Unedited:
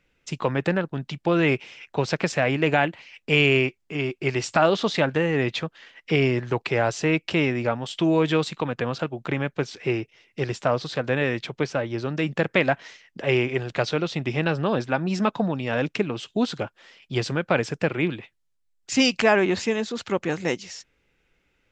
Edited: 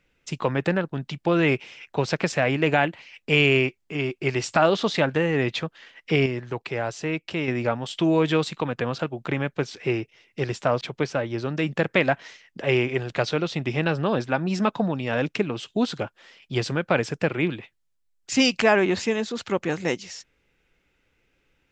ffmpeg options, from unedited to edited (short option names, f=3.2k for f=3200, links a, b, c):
-filter_complex "[0:a]asplit=4[a][b][c][d];[a]atrim=end=6.262[e];[b]atrim=start=6.258:end=7.482,asetpts=PTS-STARTPTS,volume=-5.5dB[f];[c]atrim=start=7.478:end=10.812[g];[d]atrim=start=11.408[h];[e][f]acrossfade=d=0.004:c1=hsin:c2=hsin[i];[i][g]acrossfade=d=0.004:c1=hsin:c2=hsin[j];[j][h]acrossfade=d=0.004:c1=hsin:c2=hsin"